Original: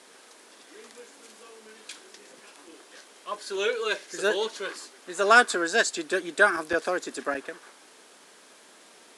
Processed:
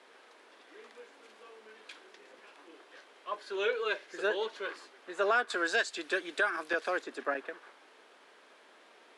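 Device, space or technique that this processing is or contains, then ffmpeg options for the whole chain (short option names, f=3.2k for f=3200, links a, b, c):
DJ mixer with the lows and highs turned down: -filter_complex "[0:a]asettb=1/sr,asplit=3[a][b][c];[a]atrim=end=5.504[d];[b]atrim=start=5.5:end=7.02,asetpts=PTS-STARTPTS,afade=t=in:d=0.004:c=qsin,afade=t=out:st=1.516:d=0.004:c=qsin,highshelf=f=2.1k:g=10[e];[c]atrim=start=7.016[f];[d][e]acrossfade=d=0.004:c1=hsin:c2=qsin[g];[g][f]acrossfade=d=0.004:c1=qsin:c2=hsin,acrossover=split=280 3700:gain=0.178 1 0.141[h][i][j];[h][i][j]amix=inputs=3:normalize=0,alimiter=limit=-15.5dB:level=0:latency=1:release=382,volume=-3dB"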